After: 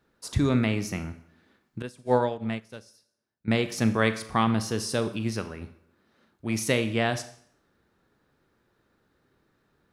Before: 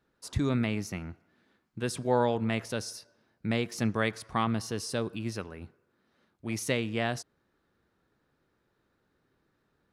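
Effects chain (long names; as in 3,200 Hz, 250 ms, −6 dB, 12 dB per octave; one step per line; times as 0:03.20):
four-comb reverb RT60 0.58 s, combs from 28 ms, DRR 10.5 dB
0:01.82–0:03.48: expander for the loud parts 2.5 to 1, over −36 dBFS
level +4.5 dB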